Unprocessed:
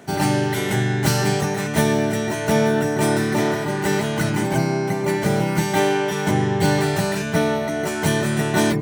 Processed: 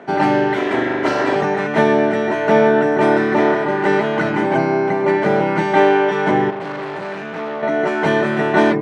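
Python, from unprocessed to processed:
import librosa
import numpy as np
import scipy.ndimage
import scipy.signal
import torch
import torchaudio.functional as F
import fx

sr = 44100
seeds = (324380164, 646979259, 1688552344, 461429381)

y = fx.lower_of_two(x, sr, delay_ms=3.0, at=(0.57, 1.36))
y = fx.tube_stage(y, sr, drive_db=29.0, bias=0.65, at=(6.5, 7.63))
y = fx.bandpass_edges(y, sr, low_hz=290.0, high_hz=2000.0)
y = y * librosa.db_to_amplitude(7.5)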